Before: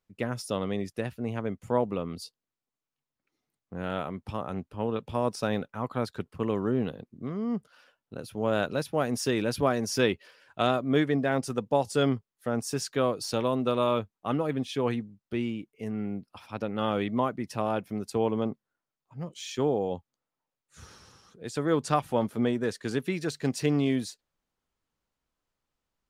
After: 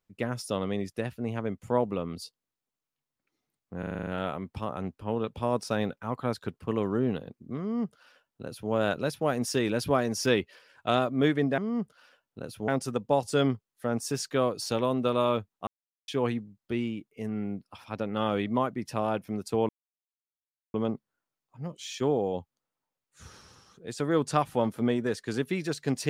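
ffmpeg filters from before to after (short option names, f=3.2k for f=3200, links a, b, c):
-filter_complex "[0:a]asplit=13[a][b][c][d][e][f][g][h][i][j][k][l][m];[a]atrim=end=3.832[n];[b]atrim=start=3.788:end=3.832[o];[c]atrim=start=3.788:end=3.832[p];[d]atrim=start=3.788:end=3.832[q];[e]atrim=start=3.788:end=3.832[r];[f]atrim=start=3.788:end=3.832[s];[g]atrim=start=3.788:end=3.832[t];[h]atrim=start=3.788:end=11.302[u];[i]atrim=start=7.328:end=8.432[v];[j]atrim=start=11.298:end=14.29,asetpts=PTS-STARTPTS,afade=t=out:st=2.988:d=0.004:c=hsin[w];[k]atrim=start=14.29:end=14.7,asetpts=PTS-STARTPTS,volume=0[x];[l]atrim=start=14.7:end=18.31,asetpts=PTS-STARTPTS,afade=t=in:d=0.004:c=hsin,afade=t=out:st=3.606:d=0.004:c=hsin,apad=pad_dur=1.05[y];[m]atrim=start=18.31,asetpts=PTS-STARTPTS,afade=t=in:d=0.004:c=hsin[z];[n][o]acrossfade=d=0.004:c1=hsin:c2=hsin[aa];[aa][p]acrossfade=d=0.004:c1=hsin:c2=hsin[ab];[ab][q]acrossfade=d=0.004:c1=hsin:c2=hsin[ac];[ac][r]acrossfade=d=0.004:c1=hsin:c2=hsin[ad];[ad][s]acrossfade=d=0.004:c1=hsin:c2=hsin[ae];[ae][t]acrossfade=d=0.004:c1=hsin:c2=hsin[af];[af][u]acrossfade=d=0.004:c1=hsin:c2=hsin[ag];[ag][v]acrossfade=d=0.004:c1=hsin:c2=hsin[ah];[w][x][y][z]concat=n=4:v=0:a=1[ai];[ah][ai]acrossfade=d=0.004:c1=hsin:c2=hsin"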